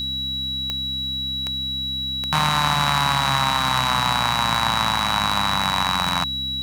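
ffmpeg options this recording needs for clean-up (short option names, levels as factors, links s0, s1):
-af "adeclick=t=4,bandreject=f=66:t=h:w=4,bandreject=f=132:t=h:w=4,bandreject=f=198:t=h:w=4,bandreject=f=264:t=h:w=4,bandreject=f=3900:w=30,agate=range=0.0891:threshold=0.126"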